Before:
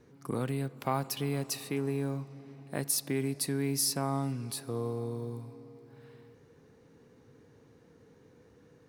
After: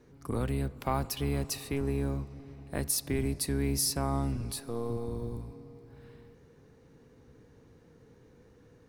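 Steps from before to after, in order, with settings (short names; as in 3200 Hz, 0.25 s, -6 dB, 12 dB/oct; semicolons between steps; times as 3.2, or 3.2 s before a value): octaver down 1 oct, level -1 dB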